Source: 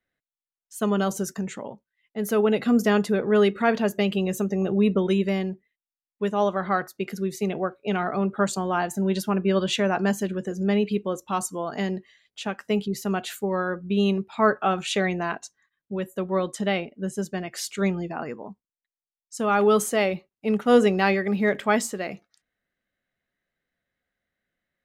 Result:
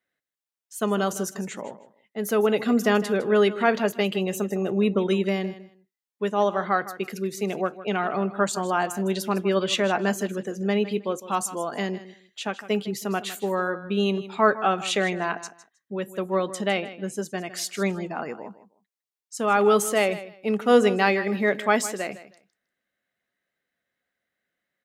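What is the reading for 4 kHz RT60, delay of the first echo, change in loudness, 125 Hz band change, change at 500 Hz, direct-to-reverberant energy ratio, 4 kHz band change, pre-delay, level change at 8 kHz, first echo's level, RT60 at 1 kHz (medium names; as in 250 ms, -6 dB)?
no reverb, 157 ms, 0.0 dB, -3.0 dB, +0.5 dB, no reverb, +1.5 dB, no reverb, +1.5 dB, -15.0 dB, no reverb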